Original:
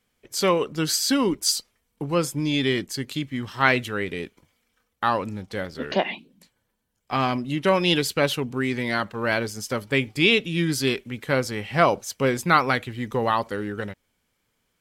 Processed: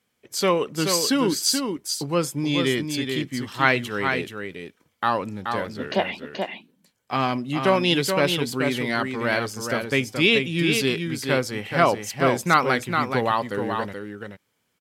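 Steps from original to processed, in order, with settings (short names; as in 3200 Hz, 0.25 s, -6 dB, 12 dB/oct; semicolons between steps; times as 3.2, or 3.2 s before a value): HPF 98 Hz; echo 0.429 s -5.5 dB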